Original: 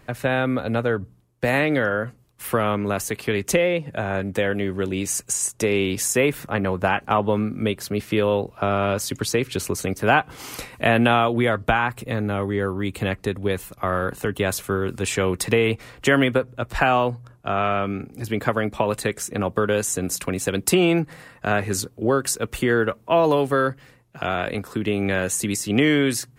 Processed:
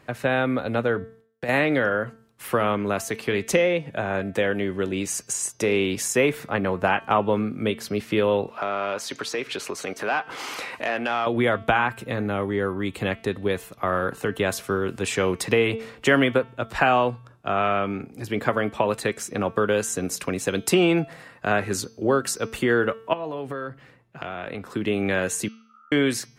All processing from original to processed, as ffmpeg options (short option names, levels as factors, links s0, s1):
-filter_complex "[0:a]asettb=1/sr,asplit=3[s0][s1][s2];[s0]atrim=end=1.024[s3];[s1]atrim=start=1.02:end=1.49,asetpts=PTS-STARTPTS,afade=t=in:d=0.004:c=qsin,afade=t=out:st=0.466:d=0.004:c=qsin,agate=range=0.0224:threshold=0.00141:ratio=3:release=100:detection=peak,acompressor=threshold=0.0501:ratio=4:attack=3.2:release=140:knee=1:detection=peak[s4];[s2]atrim=start=1.486[s5];[s3][s4]acrossfade=d=0.004:c1=hsin:c2=qsin[s6];[s6][s5]acrossfade=d=0.004:c1=qsin:c2=hsin,asettb=1/sr,asplit=3[s7][s8][s9];[s7]atrim=end=8.484[s10];[s8]atrim=start=8.48:end=11.27,asetpts=PTS-STARTPTS,afade=t=in:d=0.004:c=qsin,afade=t=out:st=2.786:d=0.004:c=qsin,equalizer=f=91:t=o:w=1.7:g=-4.5,acompressor=threshold=0.0158:ratio=2:attack=3.2:release=140:knee=1:detection=peak,asplit=2[s11][s12];[s12]highpass=f=720:p=1,volume=6.31,asoftclip=type=tanh:threshold=0.266[s13];[s11][s13]amix=inputs=2:normalize=0,lowpass=f=3300:p=1,volume=0.501[s14];[s9]atrim=start=11.266[s15];[s10][s14]acrossfade=d=0.004:c1=hsin:c2=qsin[s16];[s16][s15]acrossfade=d=0.004:c1=qsin:c2=hsin,asettb=1/sr,asplit=3[s17][s18][s19];[s17]atrim=end=23.134[s20];[s18]atrim=start=23.13:end=24.7,asetpts=PTS-STARTPTS,afade=t=in:d=0.004:c=qsin,afade=t=out:st=1.566:d=0.004:c=qsin,bass=f=250:g=2,treble=f=4000:g=-7,acompressor=threshold=0.0501:ratio=12:attack=3.2:release=140:knee=1:detection=peak[s21];[s19]atrim=start=24.696[s22];[s20][s21]acrossfade=d=0.004:c1=hsin:c2=qsin[s23];[s23][s22]acrossfade=d=0.004:c1=qsin:c2=hsin,asettb=1/sr,asplit=3[s24][s25][s26];[s24]atrim=end=25.484[s27];[s25]atrim=start=25.48:end=25.92,asetpts=PTS-STARTPTS,afade=t=in:d=0.004:c=qsin,afade=t=out:st=0.436:d=0.004:c=qsin,aeval=exprs='val(0)+0.5*0.0376*sgn(val(0))':c=same,tremolo=f=71:d=0.947,asuperpass=centerf=1300:order=8:qfactor=7.9[s28];[s26]atrim=start=25.916[s29];[s27][s28]acrossfade=d=0.004:c1=hsin:c2=qsin[s30];[s30][s29]acrossfade=d=0.004:c1=qsin:c2=hsin,highpass=f=150:p=1,highshelf=f=8800:g=-8.5,bandreject=f=224.3:t=h:w=4,bandreject=f=448.6:t=h:w=4,bandreject=f=672.9:t=h:w=4,bandreject=f=897.2:t=h:w=4,bandreject=f=1121.5:t=h:w=4,bandreject=f=1345.8:t=h:w=4,bandreject=f=1570.1:t=h:w=4,bandreject=f=1794.4:t=h:w=4,bandreject=f=2018.7:t=h:w=4,bandreject=f=2243:t=h:w=4,bandreject=f=2467.3:t=h:w=4,bandreject=f=2691.6:t=h:w=4,bandreject=f=2915.9:t=h:w=4,bandreject=f=3140.2:t=h:w=4,bandreject=f=3364.5:t=h:w=4,bandreject=f=3588.8:t=h:w=4,bandreject=f=3813.1:t=h:w=4,bandreject=f=4037.4:t=h:w=4,bandreject=f=4261.7:t=h:w=4,bandreject=f=4486:t=h:w=4,bandreject=f=4710.3:t=h:w=4,bandreject=f=4934.6:t=h:w=4,bandreject=f=5158.9:t=h:w=4,bandreject=f=5383.2:t=h:w=4,bandreject=f=5607.5:t=h:w=4,bandreject=f=5831.8:t=h:w=4,bandreject=f=6056.1:t=h:w=4,bandreject=f=6280.4:t=h:w=4"